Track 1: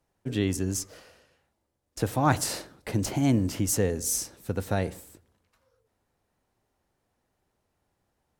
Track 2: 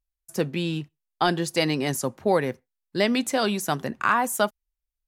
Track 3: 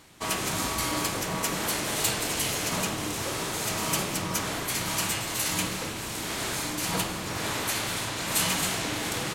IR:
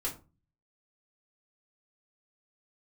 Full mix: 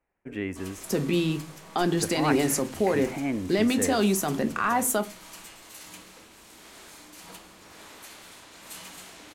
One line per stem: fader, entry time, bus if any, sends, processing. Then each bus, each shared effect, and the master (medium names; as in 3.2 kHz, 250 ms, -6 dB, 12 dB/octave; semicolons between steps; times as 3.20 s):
3.92 s -4 dB -> 4.33 s -14 dB, 0.00 s, no send, resonant high shelf 3 kHz -9.5 dB, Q 3
+2.0 dB, 0.55 s, send -9.5 dB, bass shelf 330 Hz +11 dB; peak limiter -18 dBFS, peak gain reduction 12.5 dB
-16.5 dB, 0.35 s, no send, none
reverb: on, RT60 0.30 s, pre-delay 3 ms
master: peaking EQ 120 Hz -13.5 dB 0.65 oct